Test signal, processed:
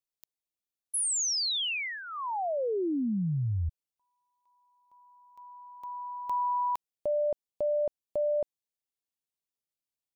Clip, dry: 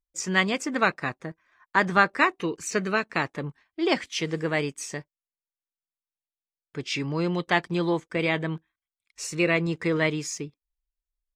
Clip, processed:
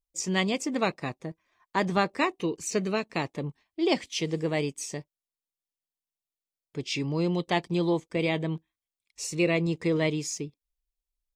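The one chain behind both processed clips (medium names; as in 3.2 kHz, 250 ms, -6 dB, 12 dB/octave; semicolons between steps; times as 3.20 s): peaking EQ 1.5 kHz -13.5 dB 0.81 oct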